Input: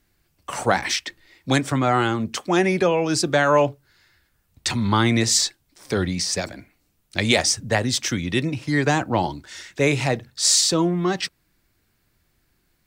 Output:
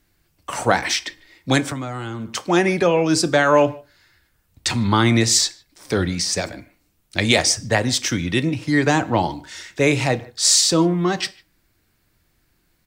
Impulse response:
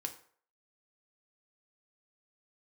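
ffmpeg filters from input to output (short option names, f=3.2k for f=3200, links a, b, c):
-filter_complex "[0:a]asplit=2[a][b];[b]adelay=150,highpass=300,lowpass=3.4k,asoftclip=type=hard:threshold=-13dB,volume=-24dB[c];[a][c]amix=inputs=2:normalize=0,asplit=2[d][e];[1:a]atrim=start_sample=2205,afade=t=out:st=0.22:d=0.01,atrim=end_sample=10143[f];[e][f]afir=irnorm=-1:irlink=0,volume=-3.5dB[g];[d][g]amix=inputs=2:normalize=0,asettb=1/sr,asplit=3[h][i][j];[h]atrim=end=1.714[k];[i]atrim=start=1.71:end=2.35,asetpts=PTS-STARTPTS,afade=t=in:d=0.004:c=qsin,afade=t=out:st=0.636:d=0.004:c=qsin,acrossover=split=220|4800[l][m][n];[l]acompressor=threshold=-30dB:ratio=4[o];[m]acompressor=threshold=-30dB:ratio=4[p];[n]acompressor=threshold=-50dB:ratio=4[q];[o][p][q]amix=inputs=3:normalize=0[r];[j]atrim=start=2.346[s];[k][r]acrossfade=d=0.004:c1=hsin:c2=qsin[t];[t][s]acrossfade=d=0.004:c1=qsin:c2=hsin,volume=-1.5dB"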